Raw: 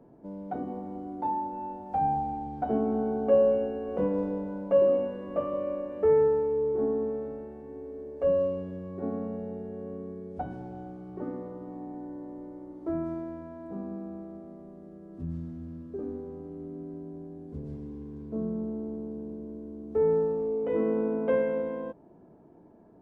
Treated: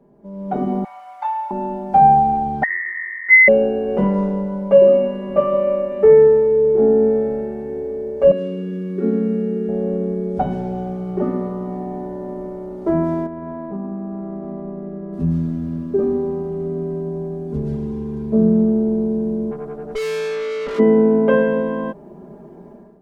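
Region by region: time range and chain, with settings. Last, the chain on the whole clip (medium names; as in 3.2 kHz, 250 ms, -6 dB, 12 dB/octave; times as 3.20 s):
0.84–1.51 s: inverse Chebyshev high-pass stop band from 420 Hz + peaking EQ 2.3 kHz +8.5 dB 0.35 oct
2.63–3.48 s: Chebyshev high-pass 520 Hz, order 8 + peaking EQ 1.3 kHz -12 dB 0.57 oct + frequency inversion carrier 2.6 kHz
8.31–9.69 s: high-pass 190 Hz + high-order bell 740 Hz -16 dB 1.1 oct
13.26–15.13 s: low-pass 2.2 kHz + compression 10:1, threshold -40 dBFS
19.50–20.78 s: comb 6.9 ms, depth 62% + whistle 450 Hz -45 dBFS + valve stage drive 39 dB, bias 0.8
whole clip: comb 5 ms, depth 92%; level rider gain up to 14.5 dB; trim -1 dB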